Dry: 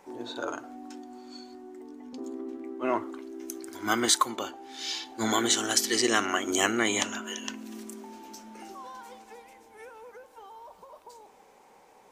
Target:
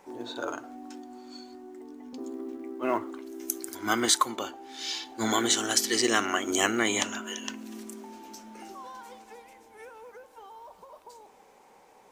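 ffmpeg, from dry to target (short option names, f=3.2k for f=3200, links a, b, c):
-filter_complex "[0:a]asettb=1/sr,asplit=3[a][b][c];[a]atrim=end=3.264[d];[b]atrim=start=3.26:end=3.75,asetpts=PTS-STARTPTS,afade=t=in:d=0.004:c=qsin,afade=t=out:st=0.486:d=0.004:c=qsin,aemphasis=mode=production:type=50kf[e];[c]atrim=start=3.746[f];[d][e]acrossfade=d=0.004:c1=hsin:c2=qsin[g];[g][f]acrossfade=d=0.004:c1=qsin:c2=hsin,acrusher=bits=9:mode=log:mix=0:aa=0.000001"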